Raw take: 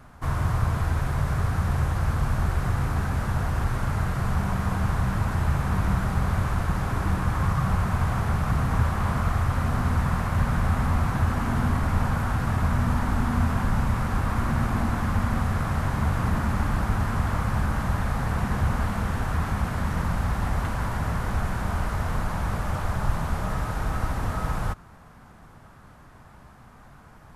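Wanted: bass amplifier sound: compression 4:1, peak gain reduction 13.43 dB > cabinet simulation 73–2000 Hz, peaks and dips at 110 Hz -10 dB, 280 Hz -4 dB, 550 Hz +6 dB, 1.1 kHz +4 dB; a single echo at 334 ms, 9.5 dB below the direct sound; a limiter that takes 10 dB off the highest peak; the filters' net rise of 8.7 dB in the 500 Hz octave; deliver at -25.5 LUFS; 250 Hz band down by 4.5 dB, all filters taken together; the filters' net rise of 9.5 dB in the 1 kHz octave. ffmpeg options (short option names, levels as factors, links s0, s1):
-af "equalizer=f=250:t=o:g=-6,equalizer=f=500:t=o:g=5.5,equalizer=f=1000:t=o:g=7.5,alimiter=limit=0.106:level=0:latency=1,aecho=1:1:334:0.335,acompressor=threshold=0.0112:ratio=4,highpass=f=73:w=0.5412,highpass=f=73:w=1.3066,equalizer=f=110:t=q:w=4:g=-10,equalizer=f=280:t=q:w=4:g=-4,equalizer=f=550:t=q:w=4:g=6,equalizer=f=1100:t=q:w=4:g=4,lowpass=f=2000:w=0.5412,lowpass=f=2000:w=1.3066,volume=5.62"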